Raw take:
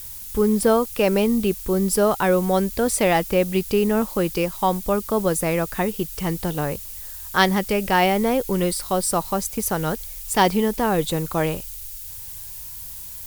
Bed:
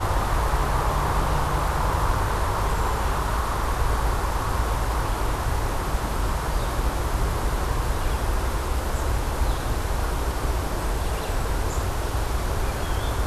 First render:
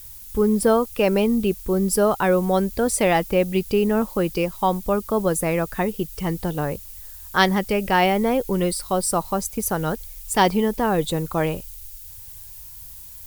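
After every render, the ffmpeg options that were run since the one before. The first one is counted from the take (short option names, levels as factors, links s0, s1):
-af "afftdn=nr=6:nf=-36"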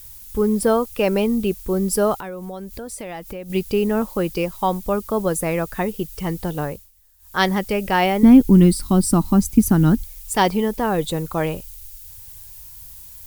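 -filter_complex "[0:a]asettb=1/sr,asplit=3[s0][s1][s2];[s0]atrim=end=2.154[s3];[s1]atrim=start=2.15:end=3.5,asetpts=PTS-STARTPTS,afade=t=in:d=0.004:c=qsin,afade=t=out:st=1.346:d=0.004:c=qsin,acompressor=threshold=0.0282:ratio=4:attack=3.2:release=140:knee=1:detection=peak[s4];[s2]atrim=start=3.496[s5];[s3][s4]acrossfade=d=0.004:c1=hsin:c2=qsin[s6];[s6][s5]acrossfade=d=0.004:c1=qsin:c2=hsin,asettb=1/sr,asplit=3[s7][s8][s9];[s7]atrim=end=8.234[s10];[s8]atrim=start=8.23:end=10.04,asetpts=PTS-STARTPTS,afade=t=in:d=0.004:c=qsin,afade=t=out:st=1.806:d=0.004:c=qsin,lowshelf=f=370:t=q:w=3:g=10[s11];[s9]atrim=start=10.036[s12];[s10][s11]acrossfade=d=0.004:c1=hsin:c2=qsin[s13];[s13][s12]acrossfade=d=0.004:c1=qsin:c2=hsin,asplit=3[s14][s15][s16];[s14]atrim=end=6.91,asetpts=PTS-STARTPTS,afade=t=out:st=6.63:d=0.28:silence=0.133352[s17];[s15]atrim=start=6.91:end=7.18,asetpts=PTS-STARTPTS,volume=0.133[s18];[s16]atrim=start=7.18,asetpts=PTS-STARTPTS,afade=t=in:d=0.28:silence=0.133352[s19];[s17][s18][s19]concat=n=3:v=0:a=1"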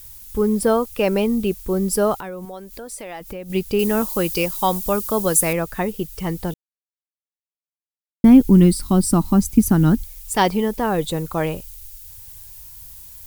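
-filter_complex "[0:a]asettb=1/sr,asplit=3[s0][s1][s2];[s0]atrim=end=2.454[s3];[s1]atrim=start=2.45:end=3.21,asetpts=PTS-STARTPTS,afade=t=in:d=0.004:c=qsin,afade=t=out:st=0.756:d=0.004:c=qsin,equalizer=f=96:w=0.62:g=-12.5[s4];[s2]atrim=start=3.206[s5];[s3][s4]acrossfade=d=0.004:c1=hsin:c2=qsin[s6];[s6][s5]acrossfade=d=0.004:c1=qsin:c2=hsin,asettb=1/sr,asplit=3[s7][s8][s9];[s7]atrim=end=3.794[s10];[s8]atrim=start=3.79:end=5.53,asetpts=PTS-STARTPTS,afade=t=in:d=0.004:c=qsin,afade=t=out:st=1.736:d=0.004:c=qsin,highshelf=f=2900:g=11.5[s11];[s9]atrim=start=5.526[s12];[s10][s11]acrossfade=d=0.004:c1=hsin:c2=qsin[s13];[s13][s12]acrossfade=d=0.004:c1=qsin:c2=hsin,asplit=3[s14][s15][s16];[s14]atrim=end=6.54,asetpts=PTS-STARTPTS,afade=t=out:st=6.536:d=0.004:c=hsin[s17];[s15]atrim=start=6.54:end=8.24,asetpts=PTS-STARTPTS,volume=0[s18];[s16]atrim=start=8.24,asetpts=PTS-STARTPTS,afade=t=in:d=0.004:c=hsin[s19];[s17][s18][s19]concat=n=3:v=0:a=1"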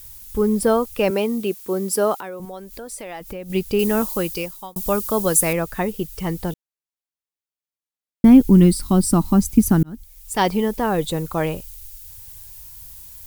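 -filter_complex "[0:a]asettb=1/sr,asplit=3[s0][s1][s2];[s0]atrim=end=1.104[s3];[s1]atrim=start=1.1:end=2.4,asetpts=PTS-STARTPTS,afade=t=in:d=0.004:c=qsin,afade=t=out:st=1.296:d=0.004:c=qsin,highpass=250[s4];[s2]atrim=start=2.396[s5];[s3][s4]acrossfade=d=0.004:c1=hsin:c2=qsin[s6];[s6][s5]acrossfade=d=0.004:c1=qsin:c2=hsin,asplit=3[s7][s8][s9];[s7]atrim=end=4.76,asetpts=PTS-STARTPTS,afade=t=out:st=4.06:d=0.7[s10];[s8]atrim=start=4.76:end=9.83,asetpts=PTS-STARTPTS,afade=t=in:d=0.004:c=hsin,afade=t=out:st=5.066:d=0.004:c=hsin[s11];[s9]atrim=start=9.83,asetpts=PTS-STARTPTS,afade=t=in:d=0.72[s12];[s10][s11][s12]concat=n=3:v=0:a=1"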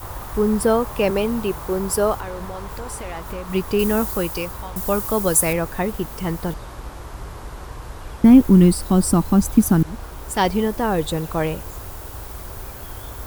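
-filter_complex "[1:a]volume=0.316[s0];[0:a][s0]amix=inputs=2:normalize=0"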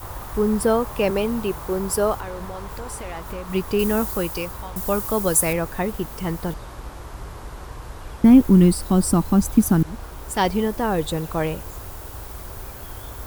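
-af "volume=0.841"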